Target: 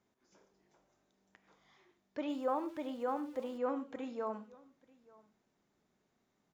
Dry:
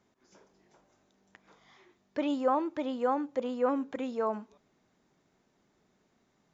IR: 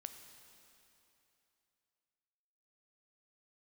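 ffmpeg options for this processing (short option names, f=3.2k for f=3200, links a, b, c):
-filter_complex "[1:a]atrim=start_sample=2205,atrim=end_sample=3528,asetrate=27783,aresample=44100[a];[0:a][a]afir=irnorm=-1:irlink=0,asettb=1/sr,asplit=3[b][c][d];[b]atrim=end=2.294[e];[c]atrim=start=2.29:end=3.58,asetpts=PTS-STARTPTS,afade=t=in:d=0.004:c=qsin,afade=t=out:st=1.286:d=0.004:c=qsin,aeval=exprs='val(0)*gte(abs(val(0)),0.00251)':c=same[f];[d]atrim=start=3.576[g];[e][f]acrossfade=d=0.004:c1=hsin:c2=qsin[h];[h][g]acrossfade=d=0.004:c1=qsin:c2=hsin,aecho=1:1:887:0.0631,volume=-4.5dB"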